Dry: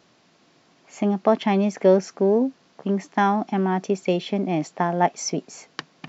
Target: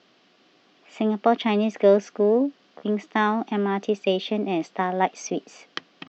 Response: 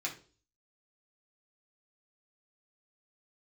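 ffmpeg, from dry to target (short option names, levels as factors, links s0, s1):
-af "highpass=150,equalizer=f=150:t=q:w=4:g=-6,equalizer=f=840:t=q:w=4:g=-5,equalizer=f=2900:t=q:w=4:g=5,lowpass=f=4900:w=0.5412,lowpass=f=4900:w=1.3066,asetrate=46722,aresample=44100,atempo=0.943874"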